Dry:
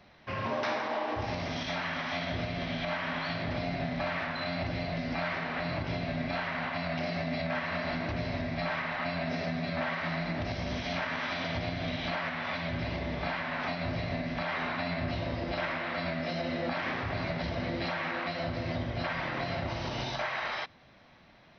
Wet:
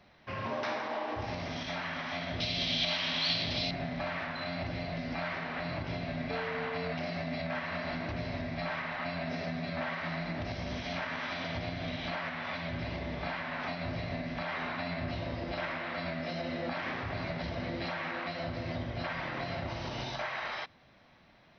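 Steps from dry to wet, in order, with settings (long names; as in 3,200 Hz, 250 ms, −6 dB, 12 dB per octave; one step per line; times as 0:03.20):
0:02.40–0:03.71: high shelf with overshoot 2,400 Hz +13.5 dB, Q 1.5
0:06.29–0:06.91: steady tone 450 Hz −34 dBFS
level −3 dB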